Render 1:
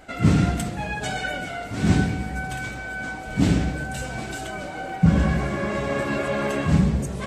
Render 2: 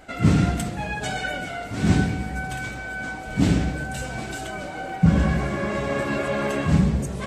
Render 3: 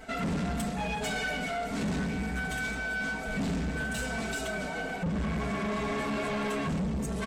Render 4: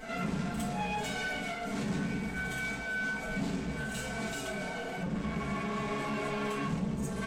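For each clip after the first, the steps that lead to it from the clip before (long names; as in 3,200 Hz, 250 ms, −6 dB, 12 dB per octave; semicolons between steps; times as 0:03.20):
no processing that can be heard
comb filter 4.5 ms, depth 99%; downward compressor 2 to 1, threshold −23 dBFS, peak gain reduction 8.5 dB; soft clipping −26 dBFS, distortion −8 dB; level −1.5 dB
brickwall limiter −33 dBFS, peak gain reduction 5.5 dB; backwards echo 55 ms −10 dB; convolution reverb, pre-delay 3 ms, DRR 2 dB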